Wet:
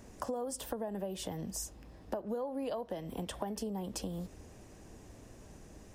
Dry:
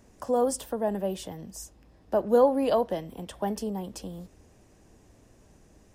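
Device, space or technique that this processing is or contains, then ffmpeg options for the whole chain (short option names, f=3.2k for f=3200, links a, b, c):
serial compression, leveller first: -af "acompressor=threshold=-29dB:ratio=2.5,acompressor=threshold=-39dB:ratio=6,volume=4dB"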